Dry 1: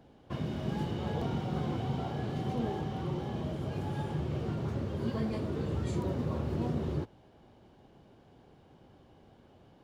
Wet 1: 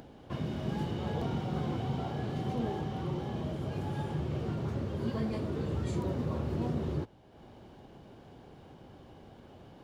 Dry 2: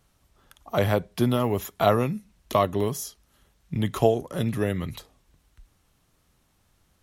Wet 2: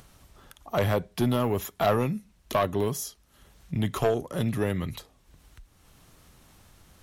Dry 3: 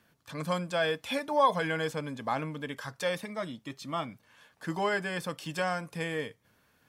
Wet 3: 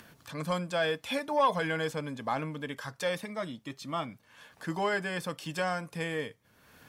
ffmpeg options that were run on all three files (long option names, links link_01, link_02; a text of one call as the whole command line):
ffmpeg -i in.wav -af "asoftclip=type=tanh:threshold=-16dB,acompressor=mode=upward:threshold=-44dB:ratio=2.5" out.wav